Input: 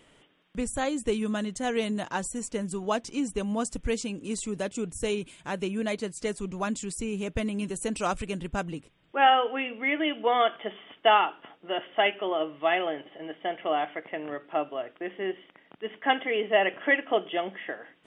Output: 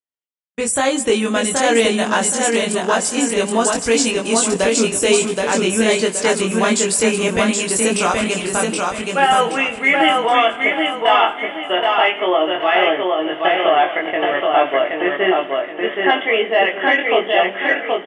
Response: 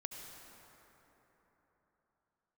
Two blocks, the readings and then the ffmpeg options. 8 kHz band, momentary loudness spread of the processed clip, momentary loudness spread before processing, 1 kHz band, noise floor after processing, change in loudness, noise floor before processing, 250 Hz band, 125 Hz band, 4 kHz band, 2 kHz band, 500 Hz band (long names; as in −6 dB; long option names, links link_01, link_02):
+19.5 dB, 5 LU, 12 LU, +10.5 dB, −30 dBFS, +12.5 dB, −61 dBFS, +11.0 dB, +8.5 dB, +13.5 dB, +13.5 dB, +12.5 dB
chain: -filter_complex "[0:a]highpass=frequency=540:poles=1,acontrast=25,agate=range=-49dB:threshold=-41dB:ratio=16:detection=peak,dynaudnorm=framelen=370:gausssize=3:maxgain=13dB,alimiter=limit=-9dB:level=0:latency=1,asplit=2[link_01][link_02];[link_02]adelay=22,volume=-2.5dB[link_03];[link_01][link_03]amix=inputs=2:normalize=0,aecho=1:1:774|1548|2322|3096|3870:0.708|0.255|0.0917|0.033|0.0119,asplit=2[link_04][link_05];[1:a]atrim=start_sample=2205[link_06];[link_05][link_06]afir=irnorm=-1:irlink=0,volume=-10.5dB[link_07];[link_04][link_07]amix=inputs=2:normalize=0,volume=-1dB"